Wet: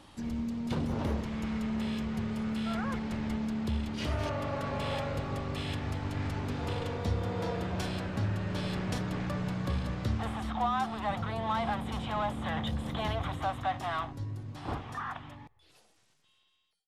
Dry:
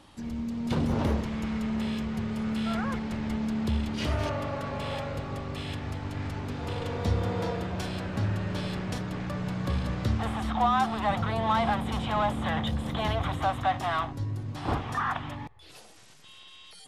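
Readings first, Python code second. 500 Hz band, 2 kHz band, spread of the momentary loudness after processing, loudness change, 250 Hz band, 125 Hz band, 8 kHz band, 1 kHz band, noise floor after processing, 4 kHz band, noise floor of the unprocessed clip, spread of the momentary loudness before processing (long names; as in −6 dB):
−3.5 dB, −4.0 dB, 4 LU, −3.5 dB, −3.5 dB, −3.5 dB, −3.0 dB, −5.0 dB, −68 dBFS, −3.5 dB, −51 dBFS, 8 LU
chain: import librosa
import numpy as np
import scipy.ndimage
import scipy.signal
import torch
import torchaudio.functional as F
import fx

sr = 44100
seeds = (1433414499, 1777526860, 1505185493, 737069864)

y = fx.fade_out_tail(x, sr, length_s=4.87)
y = fx.rider(y, sr, range_db=3, speed_s=0.5)
y = F.gain(torch.from_numpy(y), -3.0).numpy()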